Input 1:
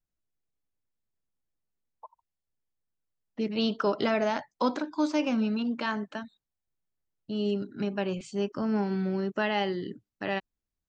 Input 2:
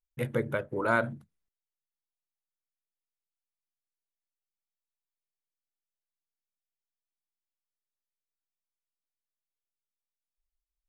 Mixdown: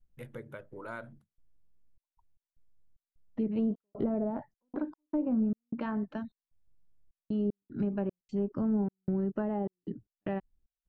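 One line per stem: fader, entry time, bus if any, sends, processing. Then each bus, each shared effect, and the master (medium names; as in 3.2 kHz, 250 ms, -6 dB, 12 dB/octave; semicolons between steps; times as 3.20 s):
0.0 dB, 0.00 s, no send, low-pass that closes with the level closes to 670 Hz, closed at -22.5 dBFS; tilt EQ -4 dB/octave; trance gate "xx.xxx.xxx.x." 76 bpm -60 dB
-12.0 dB, 0.00 s, no send, none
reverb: none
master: compression 1.5:1, threshold -43 dBFS, peak gain reduction 9.5 dB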